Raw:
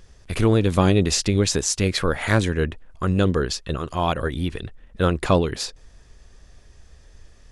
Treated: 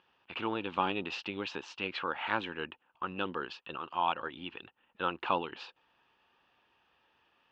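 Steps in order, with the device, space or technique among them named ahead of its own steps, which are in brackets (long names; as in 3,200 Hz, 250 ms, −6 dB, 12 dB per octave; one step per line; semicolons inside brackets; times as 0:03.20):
phone earpiece (loudspeaker in its box 390–3,200 Hz, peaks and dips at 430 Hz −7 dB, 620 Hz −8 dB, 890 Hz +9 dB, 1,300 Hz +3 dB, 2,000 Hz −7 dB, 2,800 Hz +10 dB)
level −9 dB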